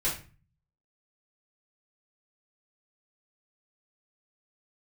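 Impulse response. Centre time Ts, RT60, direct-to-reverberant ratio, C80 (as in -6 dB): 28 ms, 0.35 s, -9.5 dB, 12.5 dB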